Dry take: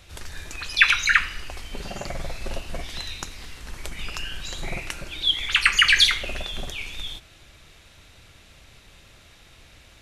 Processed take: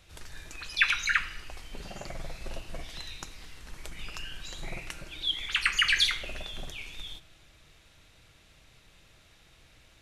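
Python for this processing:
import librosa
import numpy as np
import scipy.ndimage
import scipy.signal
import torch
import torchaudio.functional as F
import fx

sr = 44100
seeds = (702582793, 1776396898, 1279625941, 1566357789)

y = fx.room_shoebox(x, sr, seeds[0], volume_m3=2900.0, walls='furnished', distance_m=0.58)
y = F.gain(torch.from_numpy(y), -8.0).numpy()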